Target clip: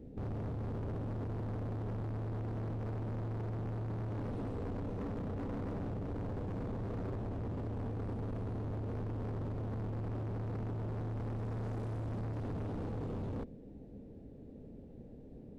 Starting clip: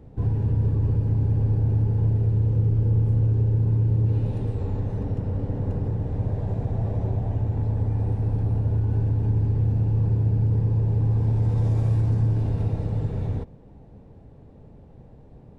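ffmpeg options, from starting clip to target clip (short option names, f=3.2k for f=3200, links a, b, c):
-af "equalizer=f=125:t=o:w=1:g=-4,equalizer=f=250:t=o:w=1:g=9,equalizer=f=500:t=o:w=1:g=5,equalizer=f=1k:t=o:w=1:g=-11,volume=31dB,asoftclip=hard,volume=-31dB,volume=-6dB"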